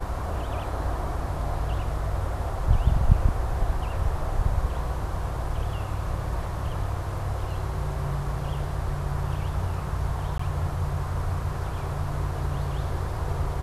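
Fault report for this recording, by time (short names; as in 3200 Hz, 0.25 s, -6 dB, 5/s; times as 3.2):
10.38–10.39 gap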